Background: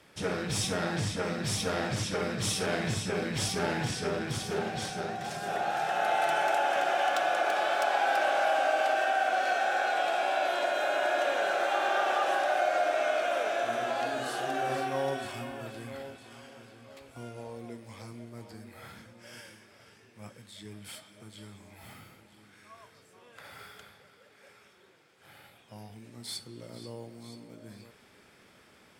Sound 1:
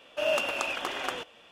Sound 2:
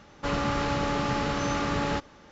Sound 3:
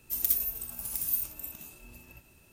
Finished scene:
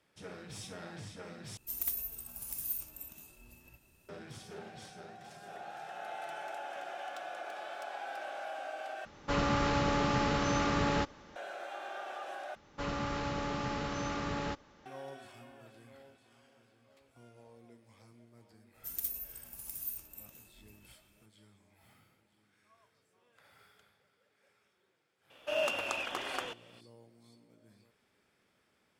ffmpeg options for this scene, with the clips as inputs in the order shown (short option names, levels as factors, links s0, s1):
-filter_complex "[3:a]asplit=2[s0][s1];[2:a]asplit=2[s2][s3];[0:a]volume=0.178[s4];[s0]aeval=exprs='0.335*sin(PI/2*1.58*val(0)/0.335)':c=same[s5];[s4]asplit=4[s6][s7][s8][s9];[s6]atrim=end=1.574[s10];[s5]atrim=end=2.52,asetpts=PTS-STARTPTS,volume=0.188[s11];[s7]atrim=start=4.086:end=9.054[s12];[s2]atrim=end=2.31,asetpts=PTS-STARTPTS,volume=0.75[s13];[s8]atrim=start=11.356:end=12.554[s14];[s3]atrim=end=2.31,asetpts=PTS-STARTPTS,volume=0.376[s15];[s9]atrim=start=14.856[s16];[s1]atrim=end=2.52,asetpts=PTS-STARTPTS,volume=0.316,afade=t=in:d=0.004:c=hsin,afade=t=out:st=2.516:d=0.004:c=hsin,adelay=18740[s17];[1:a]atrim=end=1.51,asetpts=PTS-STARTPTS,volume=0.562,afade=t=in:d=0.004:c=hsin,afade=t=out:st=1.506:d=0.004:c=hsin,adelay=25300[s18];[s10][s11]acrossfade=d=0.004:c1=hsin:c2=hsin[s19];[s19][s12]acrossfade=d=0.004:c1=hsin:c2=hsin[s20];[s20][s13]acrossfade=d=0.004:c1=hsin:c2=hsin[s21];[s21][s14]acrossfade=d=0.004:c1=hsin:c2=hsin[s22];[s22][s15]acrossfade=d=0.004:c1=hsin:c2=hsin[s23];[s23][s16]acrossfade=d=0.004:c1=hsin:c2=hsin[s24];[s24][s17][s18]amix=inputs=3:normalize=0"